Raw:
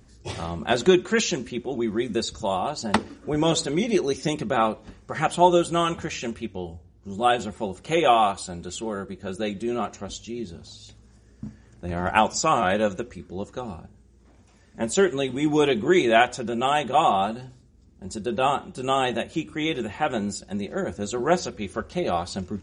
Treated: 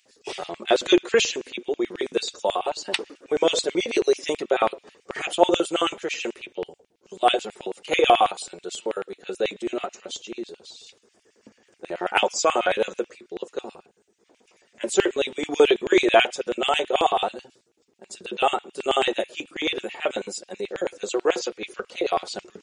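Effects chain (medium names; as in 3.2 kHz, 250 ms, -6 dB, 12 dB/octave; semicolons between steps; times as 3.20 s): coarse spectral quantiser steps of 15 dB; LFO high-pass square 9.2 Hz 430–2600 Hz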